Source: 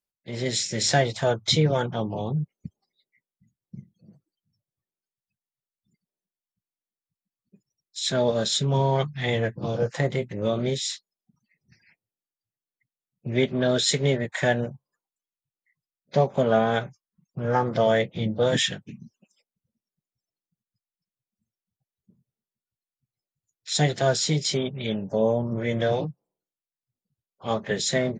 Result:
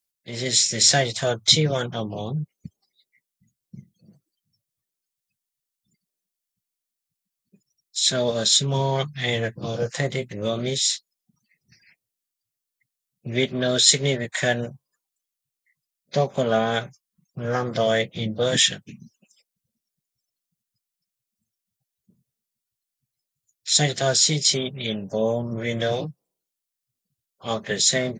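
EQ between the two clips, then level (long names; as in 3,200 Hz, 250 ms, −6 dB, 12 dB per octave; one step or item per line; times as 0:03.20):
high-shelf EQ 2,900 Hz +12 dB
notch filter 880 Hz, Q 13
−1.0 dB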